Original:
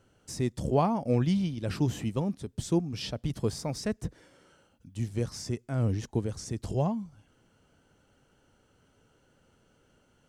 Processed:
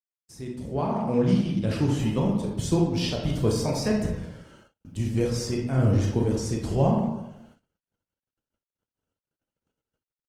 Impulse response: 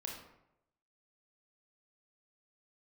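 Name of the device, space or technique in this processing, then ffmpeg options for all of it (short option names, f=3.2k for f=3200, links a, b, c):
speakerphone in a meeting room: -filter_complex "[1:a]atrim=start_sample=2205[a];[0:a][a]afir=irnorm=-1:irlink=0,asplit=2[b][c];[c]adelay=180,highpass=300,lowpass=3.4k,asoftclip=type=hard:threshold=-24.5dB,volume=-13dB[d];[b][d]amix=inputs=2:normalize=0,dynaudnorm=f=740:g=3:m=13dB,agate=range=-53dB:threshold=-48dB:ratio=16:detection=peak,volume=-4.5dB" -ar 48000 -c:a libopus -b:a 20k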